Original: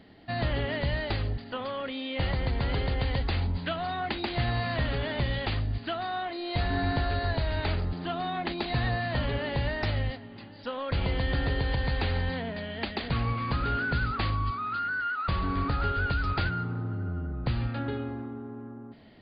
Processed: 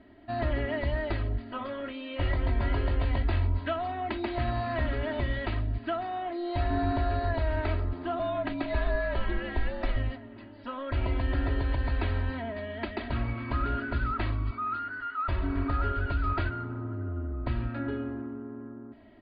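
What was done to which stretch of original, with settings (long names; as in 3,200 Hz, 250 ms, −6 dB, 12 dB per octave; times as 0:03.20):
0:01.32–0:03.70: double-tracking delay 21 ms −6.5 dB
0:08.19–0:09.96: frequency shifter −68 Hz
whole clip: low-pass filter 2,200 Hz 12 dB per octave; comb filter 3.1 ms, depth 98%; level −3 dB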